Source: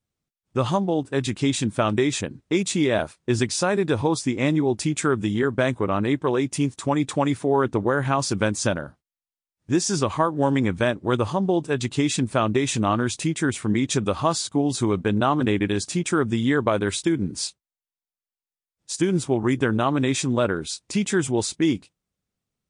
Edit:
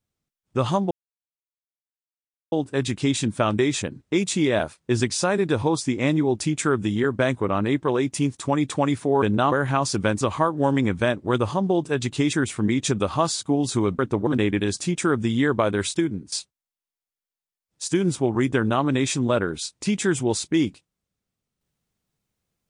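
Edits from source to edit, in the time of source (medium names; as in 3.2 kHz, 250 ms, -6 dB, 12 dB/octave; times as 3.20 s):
0.91 s: insert silence 1.61 s
7.61–7.89 s: swap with 15.05–15.35 s
8.58–10.00 s: delete
12.12–13.39 s: delete
17.06–17.40 s: fade out, to -16 dB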